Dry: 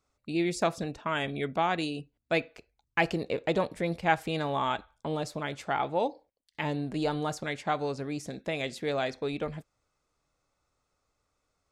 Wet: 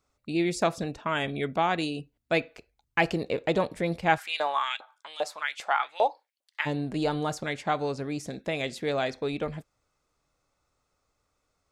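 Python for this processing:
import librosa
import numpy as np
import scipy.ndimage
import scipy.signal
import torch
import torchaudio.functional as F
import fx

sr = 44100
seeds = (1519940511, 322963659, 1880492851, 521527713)

y = fx.filter_lfo_highpass(x, sr, shape='saw_up', hz=2.5, low_hz=580.0, high_hz=3000.0, q=2.2, at=(4.17, 6.65), fade=0.02)
y = y * 10.0 ** (2.0 / 20.0)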